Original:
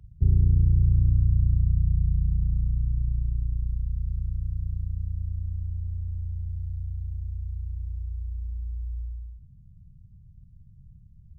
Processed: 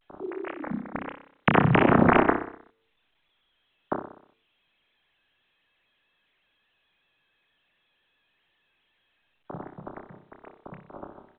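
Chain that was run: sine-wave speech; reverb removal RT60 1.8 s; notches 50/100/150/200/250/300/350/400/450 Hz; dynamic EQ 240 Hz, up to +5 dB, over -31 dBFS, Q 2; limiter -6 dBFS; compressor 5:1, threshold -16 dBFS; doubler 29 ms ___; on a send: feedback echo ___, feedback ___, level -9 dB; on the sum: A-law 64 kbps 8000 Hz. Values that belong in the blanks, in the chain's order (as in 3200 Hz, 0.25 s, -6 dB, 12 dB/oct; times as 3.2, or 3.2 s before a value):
-6.5 dB, 62 ms, 50%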